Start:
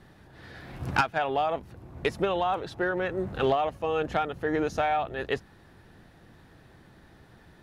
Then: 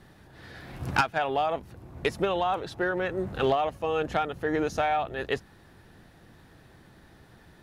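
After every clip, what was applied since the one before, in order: treble shelf 5.3 kHz +4.5 dB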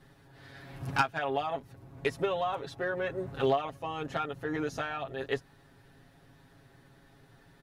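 comb 7.3 ms, depth 88%; trim -7 dB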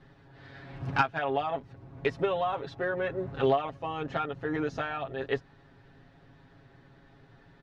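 distance through air 150 m; trim +2.5 dB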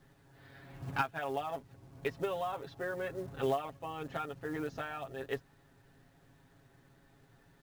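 companded quantiser 6-bit; trim -7 dB

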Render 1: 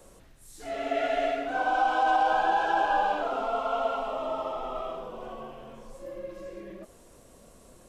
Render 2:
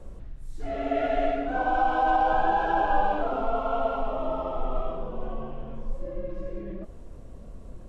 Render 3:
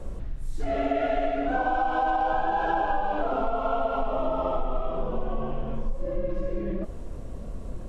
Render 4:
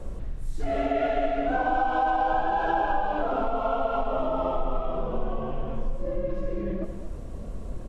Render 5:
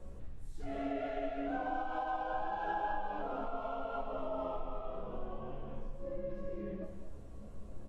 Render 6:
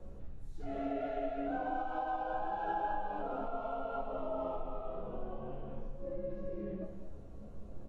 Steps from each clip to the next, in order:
RIAA curve playback
compression 6:1, threshold -29 dBFS, peak gain reduction 12 dB; trim +7 dB
delay 216 ms -10.5 dB
chord resonator C#2 sus4, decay 0.23 s; trim -2.5 dB
reverberation RT60 1.1 s, pre-delay 3 ms, DRR 17 dB; trim -1 dB

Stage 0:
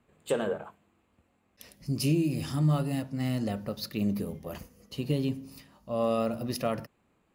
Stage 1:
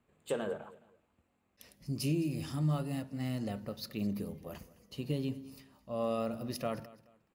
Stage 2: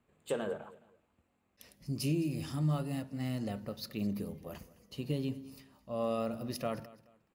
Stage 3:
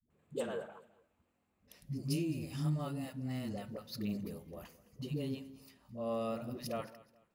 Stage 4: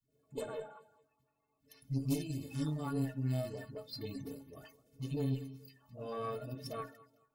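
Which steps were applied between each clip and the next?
feedback delay 213 ms, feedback 29%, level -19.5 dB; trim -6 dB
no audible change
phase dispersion highs, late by 104 ms, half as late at 360 Hz; trim -3 dB
coarse spectral quantiser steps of 30 dB; inharmonic resonator 130 Hz, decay 0.26 s, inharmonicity 0.03; Chebyshev shaper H 4 -20 dB, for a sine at -32 dBFS; trim +9.5 dB

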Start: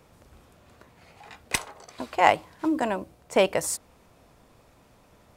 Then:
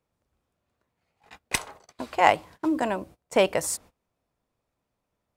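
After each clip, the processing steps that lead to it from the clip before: gate -45 dBFS, range -23 dB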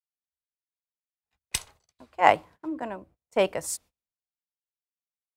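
three bands expanded up and down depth 100%; trim -7.5 dB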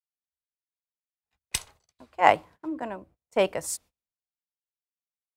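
no audible change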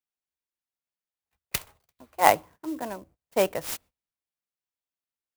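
sampling jitter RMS 0.044 ms

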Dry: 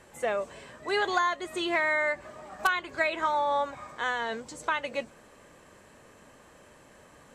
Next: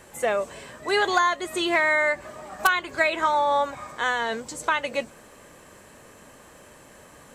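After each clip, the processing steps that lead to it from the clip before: treble shelf 9.8 kHz +11 dB; trim +5 dB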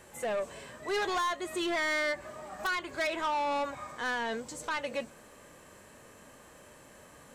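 harmonic-percussive split harmonic +5 dB; saturation -19 dBFS, distortion -9 dB; trim -8 dB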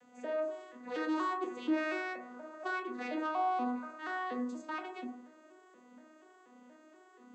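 vocoder on a broken chord major triad, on B3, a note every 239 ms; reverberation RT60 0.55 s, pre-delay 17 ms, DRR 3.5 dB; trim -4.5 dB

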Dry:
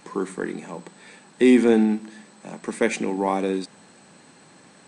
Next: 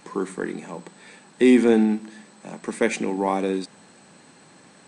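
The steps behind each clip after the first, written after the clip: no audible change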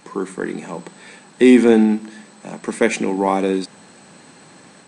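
level rider gain up to 4 dB; trim +2 dB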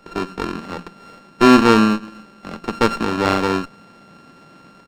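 sorted samples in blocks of 32 samples; resampled via 11.025 kHz; sliding maximum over 9 samples

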